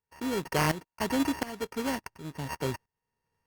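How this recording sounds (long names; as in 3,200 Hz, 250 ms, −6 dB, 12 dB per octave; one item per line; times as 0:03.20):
a buzz of ramps at a fixed pitch in blocks of 16 samples
tremolo saw up 1.4 Hz, depth 85%
aliases and images of a low sample rate 3,700 Hz, jitter 0%
Opus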